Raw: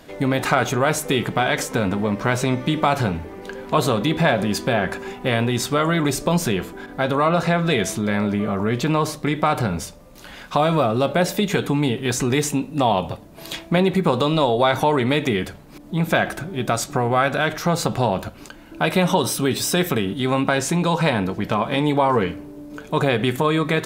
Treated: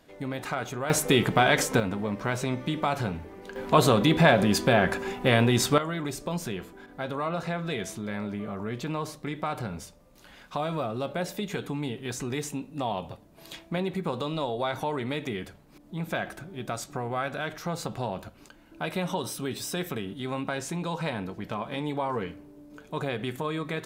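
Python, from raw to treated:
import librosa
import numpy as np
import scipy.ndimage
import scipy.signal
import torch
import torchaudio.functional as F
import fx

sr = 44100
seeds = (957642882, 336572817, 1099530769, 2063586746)

y = fx.gain(x, sr, db=fx.steps((0.0, -13.0), (0.9, -1.0), (1.8, -8.5), (3.56, -1.0), (5.78, -12.0)))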